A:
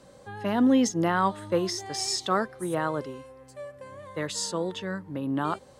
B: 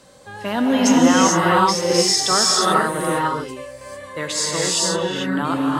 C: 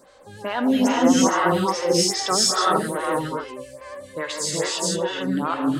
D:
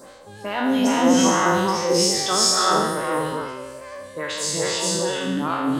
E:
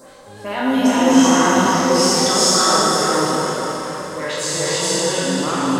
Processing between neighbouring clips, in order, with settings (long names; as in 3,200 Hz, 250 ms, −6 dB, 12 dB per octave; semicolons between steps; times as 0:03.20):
tilt shelving filter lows −4 dB, about 1,100 Hz; reverb whose tail is shaped and stops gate 470 ms rising, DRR −4.5 dB; level +5 dB
pitch vibrato 11 Hz 30 cents; phaser with staggered stages 2.4 Hz
peak hold with a decay on every bin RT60 1.05 s; reversed playback; upward compression, threshold −30 dBFS; reversed playback; level −2 dB
dense smooth reverb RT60 4.5 s, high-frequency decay 0.85×, DRR −2.5 dB